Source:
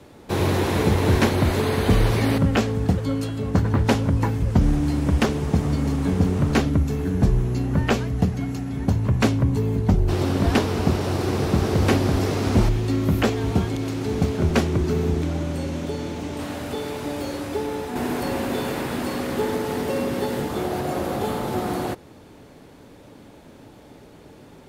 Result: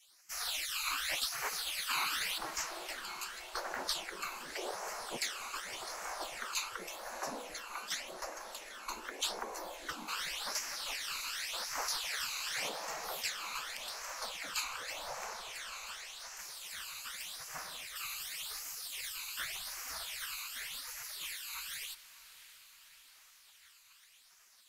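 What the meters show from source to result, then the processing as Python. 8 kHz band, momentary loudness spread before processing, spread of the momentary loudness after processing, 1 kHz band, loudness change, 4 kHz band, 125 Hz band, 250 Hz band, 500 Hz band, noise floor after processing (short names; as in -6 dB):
-1.0 dB, 8 LU, 9 LU, -13.0 dB, -16.0 dB, -3.5 dB, under -40 dB, -36.0 dB, -24.0 dB, -62 dBFS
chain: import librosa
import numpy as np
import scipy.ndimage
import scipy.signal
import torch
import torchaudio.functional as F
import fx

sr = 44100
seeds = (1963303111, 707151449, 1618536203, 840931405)

y = fx.spec_gate(x, sr, threshold_db=-25, keep='weak')
y = fx.low_shelf(y, sr, hz=390.0, db=-5.0)
y = fx.phaser_stages(y, sr, stages=12, low_hz=560.0, high_hz=3600.0, hz=0.87, feedback_pct=20)
y = fx.echo_diffused(y, sr, ms=664, feedback_pct=60, wet_db=-15.5)
y = F.gain(torch.from_numpy(y), 1.5).numpy()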